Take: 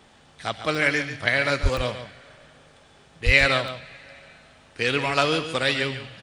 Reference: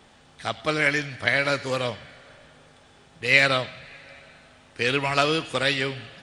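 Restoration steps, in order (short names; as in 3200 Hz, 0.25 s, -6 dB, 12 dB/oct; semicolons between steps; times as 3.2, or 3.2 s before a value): de-plosive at 1.62/3.25; interpolate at 0.75/1.77/3.68, 1.8 ms; inverse comb 0.141 s -10.5 dB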